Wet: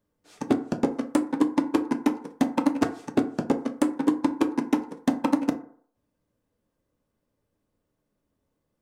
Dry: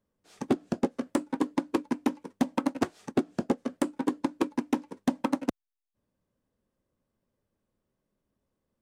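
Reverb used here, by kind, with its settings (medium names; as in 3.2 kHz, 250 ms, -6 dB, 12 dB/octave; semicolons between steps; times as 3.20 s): FDN reverb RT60 0.56 s, low-frequency decay 0.8×, high-frequency decay 0.4×, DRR 6 dB; trim +2.5 dB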